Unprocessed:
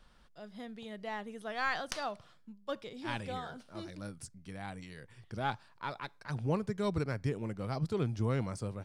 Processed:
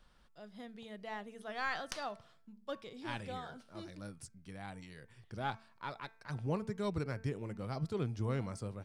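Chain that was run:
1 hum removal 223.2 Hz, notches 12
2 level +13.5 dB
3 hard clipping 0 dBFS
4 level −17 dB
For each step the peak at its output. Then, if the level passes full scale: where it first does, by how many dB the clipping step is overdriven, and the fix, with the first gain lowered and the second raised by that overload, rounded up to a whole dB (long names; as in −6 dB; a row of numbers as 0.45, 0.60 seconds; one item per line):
−15.5, −2.0, −2.0, −19.0 dBFS
no step passes full scale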